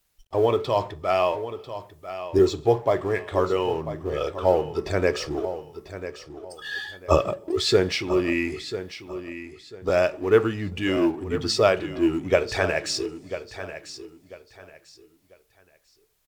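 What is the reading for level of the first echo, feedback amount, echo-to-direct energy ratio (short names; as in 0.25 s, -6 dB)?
-12.0 dB, 27%, -11.5 dB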